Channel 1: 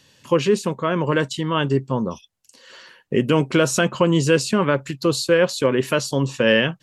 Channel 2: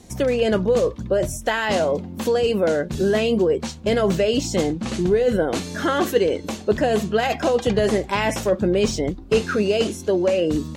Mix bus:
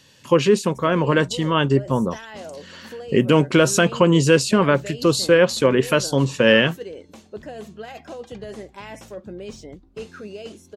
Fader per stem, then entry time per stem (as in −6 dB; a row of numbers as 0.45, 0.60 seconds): +2.0, −16.0 decibels; 0.00, 0.65 seconds